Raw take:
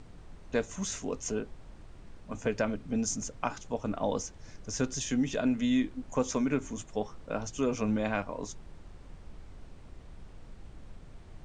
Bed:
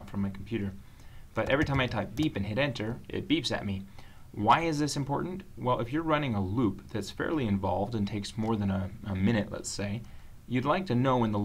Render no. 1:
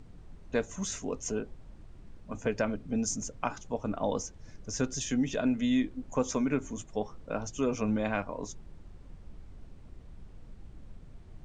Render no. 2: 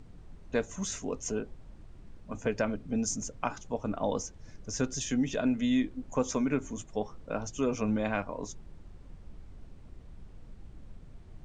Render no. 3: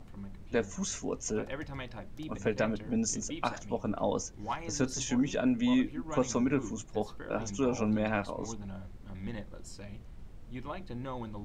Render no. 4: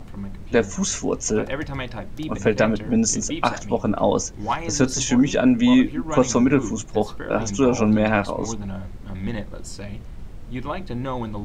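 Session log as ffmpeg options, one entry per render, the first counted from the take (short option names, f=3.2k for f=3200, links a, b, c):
-af "afftdn=nr=6:nf=-51"
-af anull
-filter_complex "[1:a]volume=-13.5dB[a];[0:a][a]amix=inputs=2:normalize=0"
-af "volume=11.5dB"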